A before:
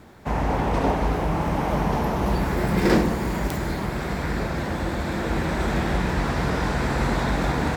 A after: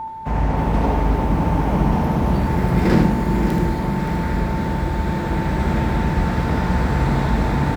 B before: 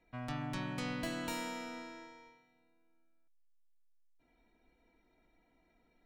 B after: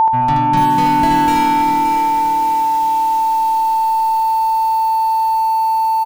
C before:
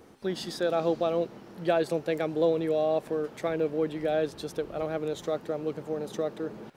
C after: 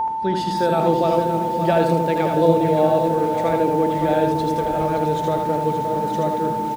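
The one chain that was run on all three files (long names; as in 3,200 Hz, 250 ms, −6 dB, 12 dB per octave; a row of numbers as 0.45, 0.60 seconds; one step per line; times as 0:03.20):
bass and treble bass +6 dB, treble −4 dB
echo through a band-pass that steps 226 ms, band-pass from 160 Hz, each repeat 0.7 octaves, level −3.5 dB
steady tone 890 Hz −24 dBFS
on a send: single-tap delay 78 ms −5 dB
on the sum: feedback echo at a low word length 571 ms, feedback 55%, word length 7 bits, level −9 dB
normalise the peak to −3 dBFS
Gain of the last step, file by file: −1.5, +16.0, +5.5 decibels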